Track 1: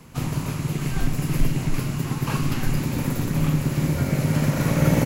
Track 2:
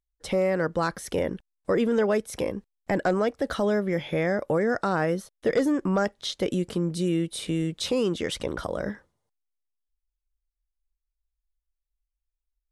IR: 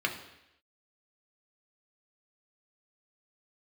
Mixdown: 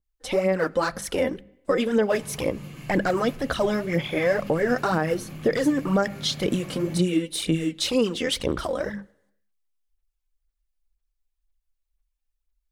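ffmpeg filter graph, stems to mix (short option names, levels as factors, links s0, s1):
-filter_complex "[0:a]alimiter=limit=0.178:level=0:latency=1:release=98,adelay=1950,volume=0.133,asplit=2[s0][s1];[s1]volume=0.562[s2];[1:a]bandreject=f=50:t=h:w=6,bandreject=f=100:t=h:w=6,bandreject=f=150:t=h:w=6,bandreject=f=200:t=h:w=6,aphaser=in_gain=1:out_gain=1:delay=4:decay=0.64:speed=2:type=sinusoidal,adynamicequalizer=threshold=0.0141:dfrequency=1800:dqfactor=0.7:tfrequency=1800:tqfactor=0.7:attack=5:release=100:ratio=0.375:range=1.5:mode=boostabove:tftype=highshelf,volume=1,asplit=2[s3][s4];[s4]volume=0.0708[s5];[2:a]atrim=start_sample=2205[s6];[s2][s5]amix=inputs=2:normalize=0[s7];[s7][s6]afir=irnorm=-1:irlink=0[s8];[s0][s3][s8]amix=inputs=3:normalize=0,alimiter=limit=0.237:level=0:latency=1:release=113"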